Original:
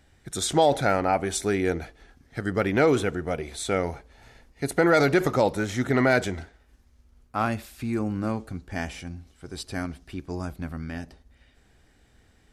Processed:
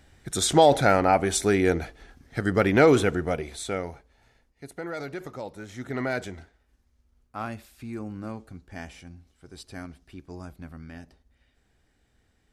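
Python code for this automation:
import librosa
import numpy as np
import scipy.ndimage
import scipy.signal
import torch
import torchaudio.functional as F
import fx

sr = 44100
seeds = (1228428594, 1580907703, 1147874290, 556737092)

y = fx.gain(x, sr, db=fx.line((3.2, 3.0), (3.88, -6.5), (4.74, -15.0), (5.49, -15.0), (6.01, -8.0)))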